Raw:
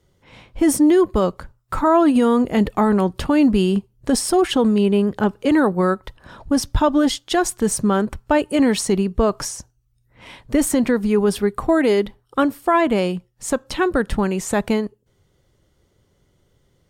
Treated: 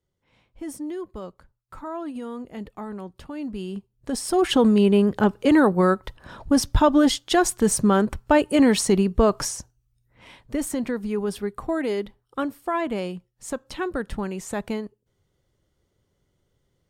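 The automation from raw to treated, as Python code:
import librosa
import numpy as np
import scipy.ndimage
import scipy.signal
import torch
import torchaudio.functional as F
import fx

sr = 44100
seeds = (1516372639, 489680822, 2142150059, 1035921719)

y = fx.gain(x, sr, db=fx.line((3.35, -18.0), (4.17, -9.0), (4.52, -0.5), (9.5, -0.5), (10.56, -9.0)))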